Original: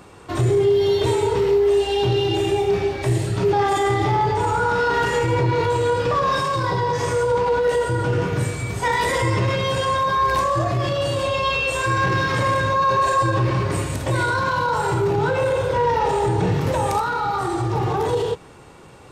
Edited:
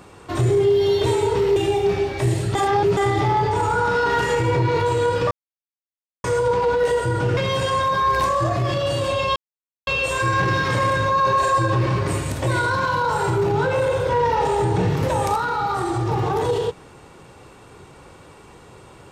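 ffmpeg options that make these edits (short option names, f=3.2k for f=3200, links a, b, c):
-filter_complex "[0:a]asplit=8[a][b][c][d][e][f][g][h];[a]atrim=end=1.562[i];[b]atrim=start=2.398:end=3.392[j];[c]atrim=start=3.388:end=3.812,asetpts=PTS-STARTPTS,areverse[k];[d]atrim=start=3.808:end=6.15,asetpts=PTS-STARTPTS,afade=t=out:st=2.338:d=0.004:c=hsin[l];[e]atrim=start=6.15:end=7.08,asetpts=PTS-STARTPTS,volume=0[m];[f]atrim=start=7.08:end=8.212,asetpts=PTS-STARTPTS,afade=t=in:d=0.004:c=hsin[n];[g]atrim=start=9.518:end=11.51,asetpts=PTS-STARTPTS,afade=t=out:st=1.988:d=0.004:c=hsin,apad=pad_dur=0.51[o];[h]atrim=start=11.51,asetpts=PTS-STARTPTS,afade=t=in:d=0.004:c=hsin[p];[i][j]acrossfade=d=0.004:c1=hsin:c2=hsin[q];[q][k]acrossfade=d=0.004:c1=hsin:c2=hsin[r];[l][m][n]concat=n=3:v=0:a=1[s];[r][s]acrossfade=d=0.004:c1=hsin:c2=hsin[t];[o][p]concat=n=2:v=0:a=1[u];[t][u]acrossfade=d=0.004:c1=hsin:c2=hsin"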